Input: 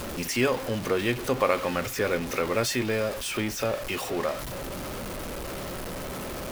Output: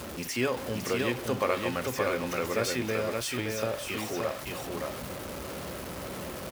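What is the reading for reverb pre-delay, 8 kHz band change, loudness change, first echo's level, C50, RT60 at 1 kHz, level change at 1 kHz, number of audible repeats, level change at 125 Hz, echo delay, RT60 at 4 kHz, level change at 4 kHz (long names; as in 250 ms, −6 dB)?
no reverb audible, −3.0 dB, −3.0 dB, −3.5 dB, no reverb audible, no reverb audible, −3.0 dB, 1, −3.0 dB, 571 ms, no reverb audible, −3.0 dB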